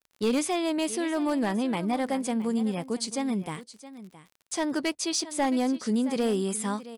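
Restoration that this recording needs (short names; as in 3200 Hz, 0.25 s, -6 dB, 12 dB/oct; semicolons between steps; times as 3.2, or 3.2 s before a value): clip repair -19 dBFS; de-click; inverse comb 0.668 s -16 dB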